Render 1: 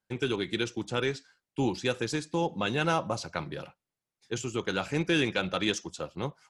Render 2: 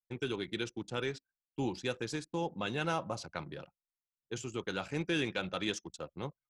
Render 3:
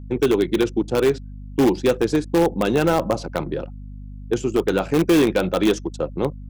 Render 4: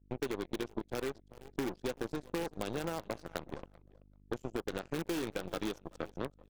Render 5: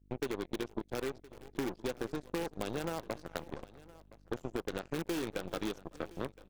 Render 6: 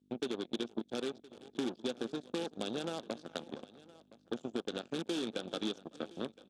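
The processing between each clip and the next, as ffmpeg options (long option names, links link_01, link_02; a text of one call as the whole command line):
ffmpeg -i in.wav -af "anlmdn=0.0631,volume=-6.5dB" out.wav
ffmpeg -i in.wav -filter_complex "[0:a]equalizer=frequency=370:width=0.45:gain=14,aeval=exprs='val(0)+0.00891*(sin(2*PI*50*n/s)+sin(2*PI*2*50*n/s)/2+sin(2*PI*3*50*n/s)/3+sin(2*PI*4*50*n/s)/4+sin(2*PI*5*50*n/s)/5)':channel_layout=same,asplit=2[link_01][link_02];[link_02]aeval=exprs='(mod(6.31*val(0)+1,2)-1)/6.31':channel_layout=same,volume=-11dB[link_03];[link_01][link_03]amix=inputs=2:normalize=0,volume=4.5dB" out.wav
ffmpeg -i in.wav -af "aecho=1:1:383|766:0.2|0.0339,aeval=exprs='0.473*(cos(1*acos(clip(val(0)/0.473,-1,1)))-cos(1*PI/2))+0.106*(cos(3*acos(clip(val(0)/0.473,-1,1)))-cos(3*PI/2))+0.00841*(cos(5*acos(clip(val(0)/0.473,-1,1)))-cos(5*PI/2))+0.0237*(cos(7*acos(clip(val(0)/0.473,-1,1)))-cos(7*PI/2))+0.015*(cos(8*acos(clip(val(0)/0.473,-1,1)))-cos(8*PI/2))':channel_layout=same,acompressor=threshold=-26dB:ratio=6,volume=-6.5dB" out.wav
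ffmpeg -i in.wav -af "aecho=1:1:1017:0.1" out.wav
ffmpeg -i in.wav -af "highpass=190,equalizer=frequency=230:width_type=q:width=4:gain=8,equalizer=frequency=1000:width_type=q:width=4:gain=-6,equalizer=frequency=2000:width_type=q:width=4:gain=-9,equalizer=frequency=3500:width_type=q:width=4:gain=10,lowpass=frequency=9200:width=0.5412,lowpass=frequency=9200:width=1.3066,volume=-1dB" out.wav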